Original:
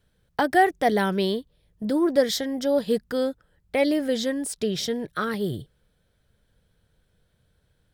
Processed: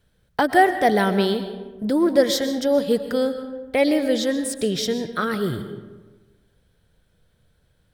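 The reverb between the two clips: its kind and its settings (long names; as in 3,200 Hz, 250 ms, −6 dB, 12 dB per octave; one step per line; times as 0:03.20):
comb and all-pass reverb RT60 1.3 s, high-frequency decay 0.5×, pre-delay 85 ms, DRR 9.5 dB
level +3 dB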